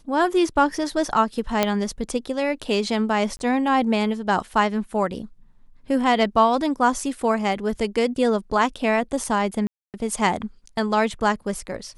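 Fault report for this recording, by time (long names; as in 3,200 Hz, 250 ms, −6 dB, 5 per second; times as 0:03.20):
0:01.63: click −4 dBFS
0:03.37–0:03.39: drop-out 20 ms
0:09.67–0:09.94: drop-out 268 ms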